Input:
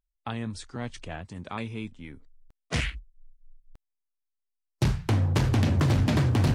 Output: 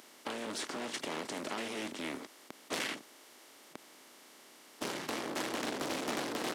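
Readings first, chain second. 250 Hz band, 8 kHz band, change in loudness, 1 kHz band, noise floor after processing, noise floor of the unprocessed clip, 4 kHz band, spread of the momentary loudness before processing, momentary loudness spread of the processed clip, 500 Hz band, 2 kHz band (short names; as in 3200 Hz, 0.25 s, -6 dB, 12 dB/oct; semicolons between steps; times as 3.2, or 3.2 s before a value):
-10.5 dB, +1.0 dB, -10.5 dB, -3.0 dB, -58 dBFS, -82 dBFS, -1.5 dB, 17 LU, 19 LU, -3.5 dB, -3.0 dB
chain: per-bin compression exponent 0.4; high shelf 9100 Hz +10 dB; hard clip -25.5 dBFS, distortion -6 dB; HPF 270 Hz 24 dB/oct; notch 2500 Hz, Q 13; downsampling 32000 Hz; Doppler distortion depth 0.26 ms; gain -3.5 dB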